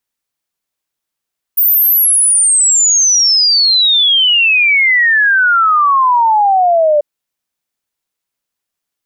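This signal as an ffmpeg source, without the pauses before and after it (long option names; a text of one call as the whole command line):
ffmpeg -f lavfi -i "aevalsrc='0.447*clip(min(t,5.44-t)/0.01,0,1)*sin(2*PI*15000*5.44/log(580/15000)*(exp(log(580/15000)*t/5.44)-1))':duration=5.44:sample_rate=44100" out.wav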